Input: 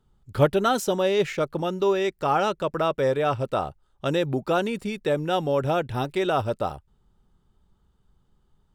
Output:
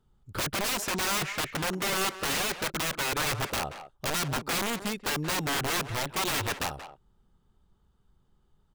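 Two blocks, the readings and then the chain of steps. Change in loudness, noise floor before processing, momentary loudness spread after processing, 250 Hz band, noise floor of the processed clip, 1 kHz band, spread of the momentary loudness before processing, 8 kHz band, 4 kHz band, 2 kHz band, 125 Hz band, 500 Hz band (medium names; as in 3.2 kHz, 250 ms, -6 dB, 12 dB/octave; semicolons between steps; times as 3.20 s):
-4.5 dB, -67 dBFS, 5 LU, -7.5 dB, -68 dBFS, -6.0 dB, 6 LU, +10.5 dB, +4.5 dB, +3.0 dB, -6.5 dB, -13.0 dB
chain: integer overflow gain 21.5 dB; speakerphone echo 180 ms, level -7 dB; trim -2.5 dB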